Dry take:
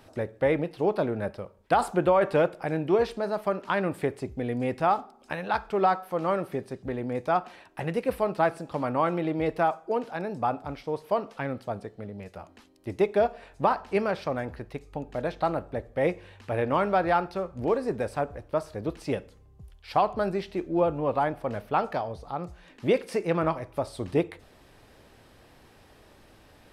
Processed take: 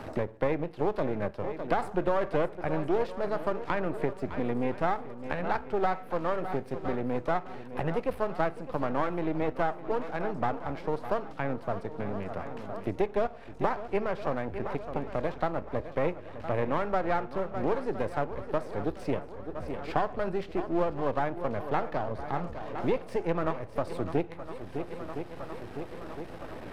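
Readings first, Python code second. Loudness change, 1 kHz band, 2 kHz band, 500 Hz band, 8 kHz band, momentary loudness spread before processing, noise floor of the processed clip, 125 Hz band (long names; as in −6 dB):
−4.0 dB, −4.0 dB, −3.0 dB, −3.5 dB, can't be measured, 11 LU, −44 dBFS, −2.0 dB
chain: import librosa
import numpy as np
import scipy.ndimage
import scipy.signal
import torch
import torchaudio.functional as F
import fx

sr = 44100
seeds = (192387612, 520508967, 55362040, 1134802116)

y = np.where(x < 0.0, 10.0 ** (-12.0 / 20.0) * x, x)
y = fx.high_shelf(y, sr, hz=3100.0, db=-10.5)
y = fx.echo_swing(y, sr, ms=1012, ratio=1.5, feedback_pct=39, wet_db=-15)
y = fx.band_squash(y, sr, depth_pct=70)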